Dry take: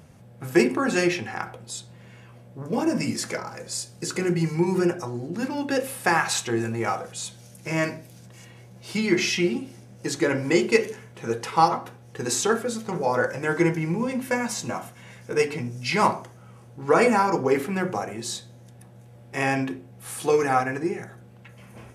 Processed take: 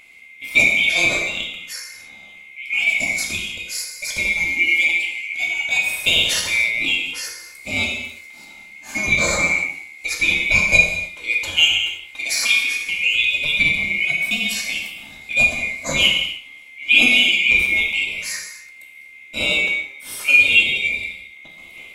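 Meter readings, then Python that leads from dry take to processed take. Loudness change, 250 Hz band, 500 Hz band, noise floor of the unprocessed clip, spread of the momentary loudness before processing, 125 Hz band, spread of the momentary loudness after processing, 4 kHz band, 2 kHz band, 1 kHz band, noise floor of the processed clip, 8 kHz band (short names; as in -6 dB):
+8.0 dB, -9.0 dB, -9.5 dB, -48 dBFS, 14 LU, -6.0 dB, 16 LU, +16.0 dB, +14.5 dB, -11.0 dB, -43 dBFS, +5.0 dB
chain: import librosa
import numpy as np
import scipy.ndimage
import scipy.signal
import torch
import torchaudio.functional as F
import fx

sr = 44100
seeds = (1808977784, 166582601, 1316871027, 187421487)

y = fx.band_swap(x, sr, width_hz=2000)
y = fx.rev_gated(y, sr, seeds[0], gate_ms=330, shape='falling', drr_db=0.0)
y = y * librosa.db_to_amplitude(2.0)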